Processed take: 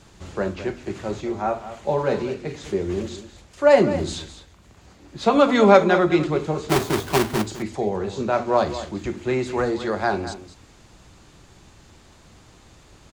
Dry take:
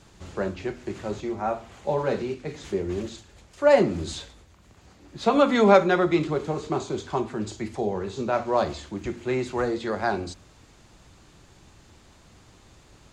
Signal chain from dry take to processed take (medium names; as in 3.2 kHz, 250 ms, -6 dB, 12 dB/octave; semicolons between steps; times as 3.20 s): 6.69–7.42 s: square wave that keeps the level; delay 207 ms -13 dB; trim +3 dB